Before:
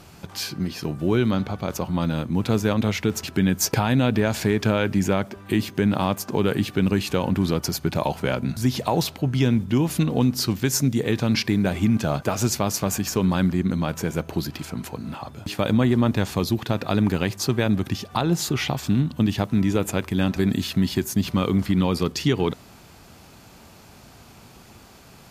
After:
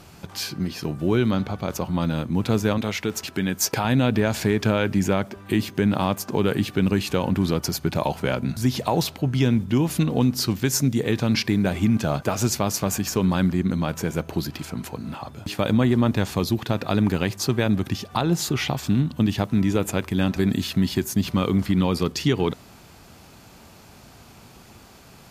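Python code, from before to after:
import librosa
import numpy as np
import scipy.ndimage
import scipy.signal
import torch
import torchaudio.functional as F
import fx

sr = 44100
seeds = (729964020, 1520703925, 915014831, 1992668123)

y = fx.low_shelf(x, sr, hz=240.0, db=-8.5, at=(2.78, 3.85))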